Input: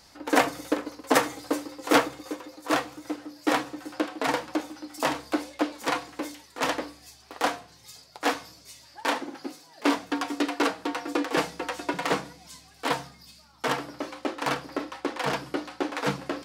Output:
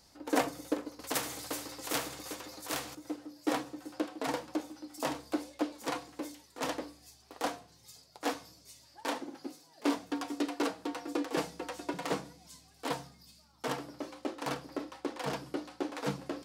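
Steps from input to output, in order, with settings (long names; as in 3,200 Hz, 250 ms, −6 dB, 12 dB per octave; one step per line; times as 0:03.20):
parametric band 1,800 Hz −6.5 dB 2.4 octaves
0:00.99–0:02.95: every bin compressed towards the loudest bin 2 to 1
level −5 dB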